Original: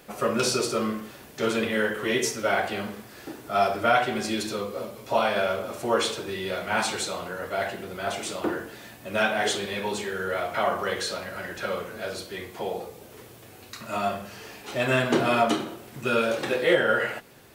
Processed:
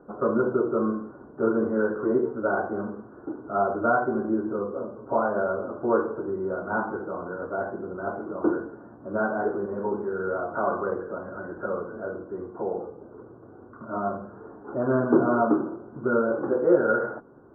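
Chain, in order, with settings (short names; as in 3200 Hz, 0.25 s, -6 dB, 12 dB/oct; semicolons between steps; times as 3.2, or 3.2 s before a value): rippled Chebyshev low-pass 1500 Hz, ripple 3 dB; bell 300 Hz +6.5 dB 1 oct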